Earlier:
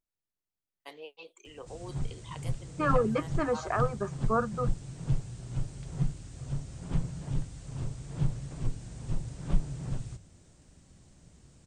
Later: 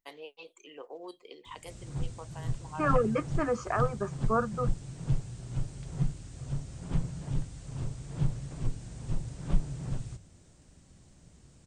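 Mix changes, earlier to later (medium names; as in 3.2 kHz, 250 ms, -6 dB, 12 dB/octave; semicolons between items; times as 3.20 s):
first voice: entry -0.80 s; second voice: add Butterworth band-stop 3.8 kHz, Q 2.3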